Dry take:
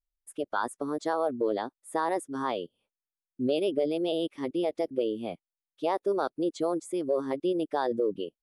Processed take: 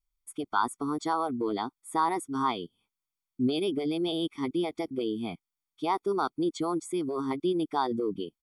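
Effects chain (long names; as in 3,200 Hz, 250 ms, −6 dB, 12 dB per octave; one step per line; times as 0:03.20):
comb filter 0.9 ms, depth 92%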